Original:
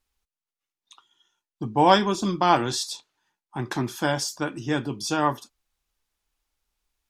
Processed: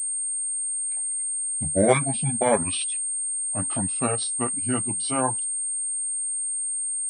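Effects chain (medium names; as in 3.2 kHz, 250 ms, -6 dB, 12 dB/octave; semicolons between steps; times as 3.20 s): pitch bend over the whole clip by -9.5 st ending unshifted; reverb removal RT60 0.94 s; class-D stage that switches slowly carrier 8.6 kHz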